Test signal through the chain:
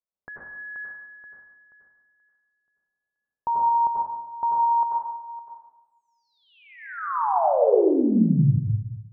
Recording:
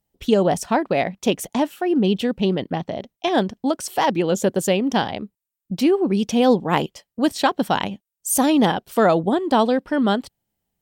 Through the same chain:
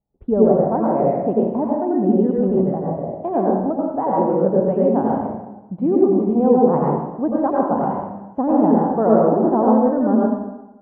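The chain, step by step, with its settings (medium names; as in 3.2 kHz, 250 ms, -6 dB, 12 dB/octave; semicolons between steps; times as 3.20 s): low-pass 1 kHz 24 dB/octave; plate-style reverb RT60 1 s, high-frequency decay 0.8×, pre-delay 75 ms, DRR -4 dB; trim -2.5 dB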